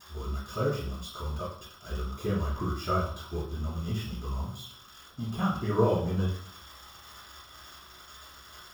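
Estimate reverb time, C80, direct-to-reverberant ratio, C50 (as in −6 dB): 0.55 s, 8.0 dB, −17.0 dB, 3.5 dB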